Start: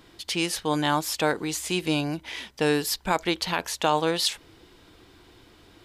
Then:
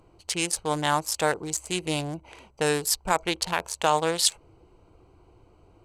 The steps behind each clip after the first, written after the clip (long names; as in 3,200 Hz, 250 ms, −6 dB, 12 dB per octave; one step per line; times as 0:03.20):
adaptive Wiener filter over 25 samples
graphic EQ with 10 bands 250 Hz −10 dB, 4,000 Hz −4 dB, 8,000 Hz +11 dB
level +2 dB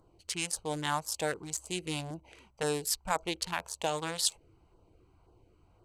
auto-filter notch saw down 1.9 Hz 270–2,700 Hz
level −6.5 dB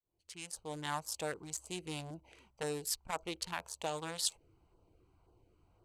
fade in at the beginning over 0.95 s
saturating transformer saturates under 1,200 Hz
level −5 dB